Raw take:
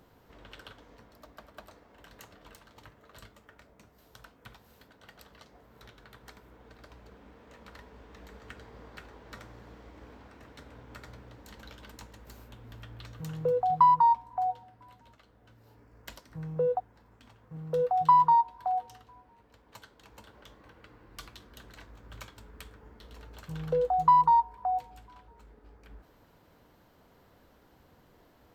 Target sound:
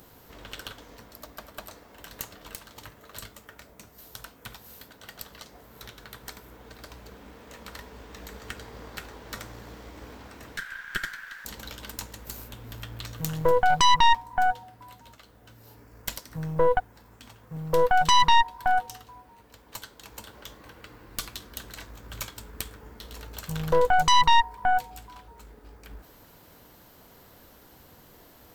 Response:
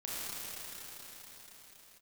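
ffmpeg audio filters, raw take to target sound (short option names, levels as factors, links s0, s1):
-filter_complex "[0:a]crystalizer=i=2.5:c=0,asettb=1/sr,asplit=3[s0][s1][s2];[s0]atrim=end=10.574[s3];[s1]atrim=start=10.57:end=11.45,asetpts=PTS-STARTPTS,afade=t=in:d=0.004:c=qsin,afade=t=out:st=0.876:d=0.004:c=qsin,highpass=f=1600:t=q:w=12[s4];[s2]atrim=start=11.446[s5];[s3][s4]acrossfade=d=0.004:c1=hsin:c2=qsin[s6];[s6][s5]acrossfade=d=0.004:c1=qsin:c2=hsin,aeval=exprs='0.299*(cos(1*acos(clip(val(0)/0.299,-1,1)))-cos(1*PI/2))+0.119*(cos(5*acos(clip(val(0)/0.299,-1,1)))-cos(5*PI/2))+0.119*(cos(8*acos(clip(val(0)/0.299,-1,1)))-cos(8*PI/2))':c=same,volume=0.668"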